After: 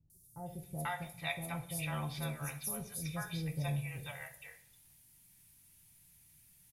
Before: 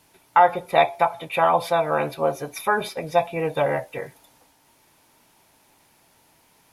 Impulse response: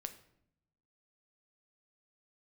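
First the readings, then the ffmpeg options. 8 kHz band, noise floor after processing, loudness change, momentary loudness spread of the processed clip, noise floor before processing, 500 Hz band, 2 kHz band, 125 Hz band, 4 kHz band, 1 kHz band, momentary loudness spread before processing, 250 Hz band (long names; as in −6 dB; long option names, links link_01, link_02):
−1.0 dB, −64 dBFS, −17.5 dB, 12 LU, −60 dBFS, −26.0 dB, −15.0 dB, −2.0 dB, −11.0 dB, −25.0 dB, 10 LU, −8.5 dB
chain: -filter_complex "[0:a]firequalizer=gain_entry='entry(120,0);entry(260,-17);entry(470,-25);entry(950,-25);entry(1900,-13);entry(9300,1)':delay=0.05:min_phase=1,acrossover=split=610|5400[link_01][link_02][link_03];[link_03]adelay=100[link_04];[link_02]adelay=490[link_05];[link_01][link_05][link_04]amix=inputs=3:normalize=0[link_06];[1:a]atrim=start_sample=2205,asetrate=52920,aresample=44100[link_07];[link_06][link_07]afir=irnorm=-1:irlink=0,volume=5dB"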